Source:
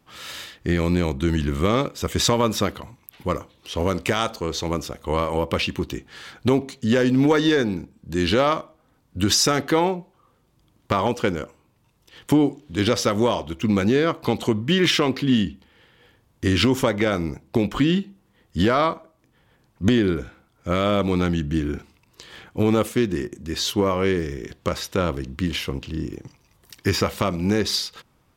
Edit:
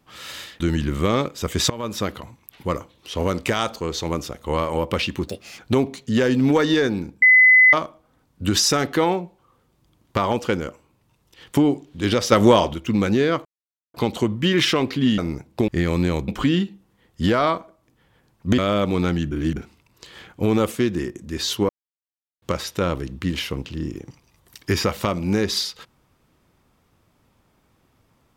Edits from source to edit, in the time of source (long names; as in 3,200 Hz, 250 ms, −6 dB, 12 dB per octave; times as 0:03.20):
0:00.60–0:01.20: move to 0:17.64
0:02.30–0:02.77: fade in, from −17.5 dB
0:05.88–0:06.34: play speed 148%
0:07.97–0:08.48: beep over 2,020 Hz −8.5 dBFS
0:13.07–0:13.49: clip gain +6.5 dB
0:14.20: splice in silence 0.49 s
0:15.44–0:17.14: remove
0:19.94–0:20.75: remove
0:21.48–0:21.73: reverse
0:23.86–0:24.59: silence